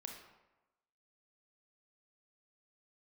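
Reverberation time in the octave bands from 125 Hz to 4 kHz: 0.95, 0.95, 1.1, 1.0, 0.90, 0.65 s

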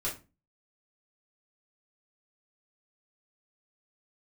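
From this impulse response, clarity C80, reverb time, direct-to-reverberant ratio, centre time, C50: 17.5 dB, 0.30 s, -6.5 dB, 23 ms, 9.5 dB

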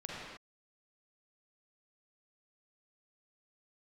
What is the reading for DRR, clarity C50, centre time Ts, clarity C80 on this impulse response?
-6.0 dB, -4.5 dB, 0.113 s, -1.5 dB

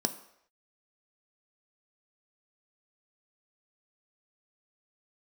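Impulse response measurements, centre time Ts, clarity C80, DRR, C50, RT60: 9 ms, 16.0 dB, 8.0 dB, 14.0 dB, not exponential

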